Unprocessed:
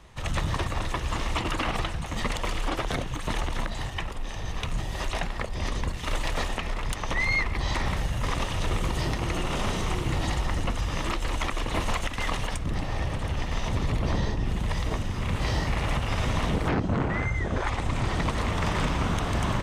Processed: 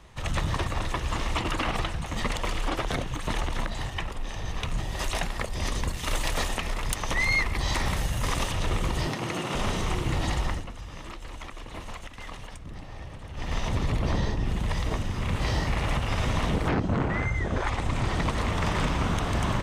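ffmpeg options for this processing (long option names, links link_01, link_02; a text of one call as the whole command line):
ffmpeg -i in.wav -filter_complex "[0:a]asettb=1/sr,asplit=3[link_01][link_02][link_03];[link_01]atrim=end=4.994[link_04];[link_02]atrim=start=4.99:end=8.52,asetpts=PTS-STARTPTS,afade=type=in:duration=0.004:curve=qsin,afade=type=out:start_time=3.526:duration=0.004:curve=qsin,highshelf=frequency=6500:gain=11[link_05];[link_03]atrim=start=8.516[link_06];[link_04][link_05]acrossfade=duration=0.004:curve1=hsin:curve2=qsin[link_07];[link_07][link_06]acrossfade=duration=0.004:curve1=qsin:curve2=hsin,asettb=1/sr,asplit=3[link_08][link_09][link_10];[link_08]atrim=end=9.074[link_11];[link_09]atrim=start=9.07:end=9.55,asetpts=PTS-STARTPTS,afade=type=in:duration=0.004:curve=qsin,afade=type=out:start_time=0.476:duration=0.004:curve=qsin,highpass=frequency=120:width=0.5412,highpass=frequency=120:width=1.3066[link_12];[link_10]atrim=start=9.546[link_13];[link_11][link_12]acrossfade=duration=0.004:curve1=hsin:curve2=qsin[link_14];[link_14][link_13]acrossfade=duration=0.004:curve1=qsin:curve2=hsin,asplit=3[link_15][link_16][link_17];[link_15]atrim=end=10.65,asetpts=PTS-STARTPTS,afade=type=out:start_time=10.48:duration=0.17:silence=0.266073[link_18];[link_16]atrim=start=10.65:end=13.33,asetpts=PTS-STARTPTS,volume=-11.5dB[link_19];[link_17]atrim=start=13.33,asetpts=PTS-STARTPTS,afade=type=in:duration=0.17:silence=0.266073[link_20];[link_18][link_19][link_20]concat=n=3:v=0:a=1" out.wav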